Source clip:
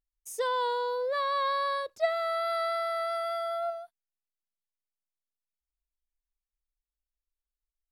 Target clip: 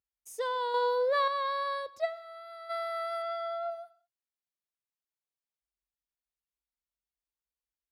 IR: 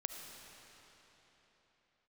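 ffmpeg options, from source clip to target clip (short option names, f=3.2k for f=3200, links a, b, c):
-filter_complex "[0:a]highpass=f=54:w=0.5412,highpass=f=54:w=1.3066,asplit=3[a][b][c];[a]afade=t=out:st=2.04:d=0.02[d];[b]agate=range=-33dB:threshold=-20dB:ratio=3:detection=peak,afade=t=in:st=2.04:d=0.02,afade=t=out:st=2.69:d=0.02[e];[c]afade=t=in:st=2.69:d=0.02[f];[d][e][f]amix=inputs=3:normalize=0,asplit=2[g][h];[1:a]atrim=start_sample=2205,afade=t=out:st=0.26:d=0.01,atrim=end_sample=11907,lowpass=5.9k[i];[h][i]afir=irnorm=-1:irlink=0,volume=-7.5dB[j];[g][j]amix=inputs=2:normalize=0,asettb=1/sr,asplit=3[k][l][m];[k]atrim=end=0.744[n];[l]atrim=start=0.74:end=1.28,asetpts=PTS-STARTPTS,afade=t=in:d=0.004:c=qsin,afade=t=out:st=0.536:d=0.004:c=qsin,acontrast=52[o];[m]atrim=start=1.276[p];[n][o]acrossfade=d=0.004:c1=hsin:c2=qsin[q];[q][p]acrossfade=d=0.004:c1=qsin:c2=hsin,asettb=1/sr,asplit=3[r][s][t];[r]atrim=end=3.224[u];[s]atrim=start=3.22:end=3.71,asetpts=PTS-STARTPTS,afade=t=in:d=0.004:c=qsin,afade=t=out:st=0.486:d=0.004:c=qsin,lowpass=6.3k[v];[t]atrim=start=3.706[w];[u][v]acrossfade=d=0.004:c1=hsin:c2=qsin[x];[x][w]acrossfade=d=0.004:c1=qsin:c2=hsin,volume=-5.5dB"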